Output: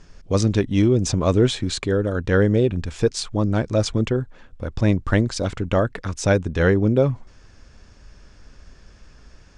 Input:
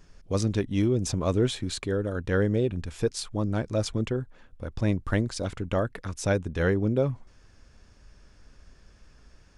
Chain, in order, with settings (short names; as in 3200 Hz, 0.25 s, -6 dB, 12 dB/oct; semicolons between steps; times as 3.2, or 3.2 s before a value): LPF 8400 Hz 24 dB/oct; gain +7 dB